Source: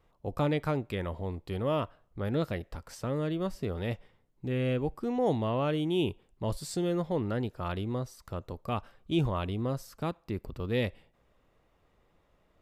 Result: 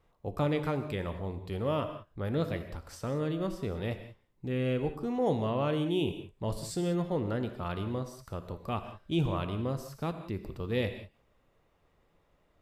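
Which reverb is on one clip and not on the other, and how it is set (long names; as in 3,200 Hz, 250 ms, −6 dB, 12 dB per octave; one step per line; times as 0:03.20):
reverb whose tail is shaped and stops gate 210 ms flat, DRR 8 dB
level −1.5 dB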